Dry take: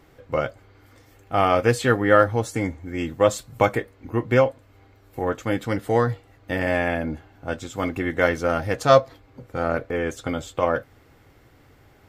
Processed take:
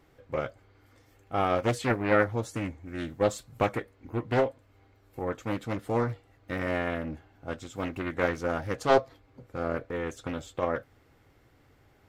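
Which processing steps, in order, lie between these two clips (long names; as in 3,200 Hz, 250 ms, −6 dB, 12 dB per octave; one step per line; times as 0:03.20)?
highs frequency-modulated by the lows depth 0.67 ms
level −7.5 dB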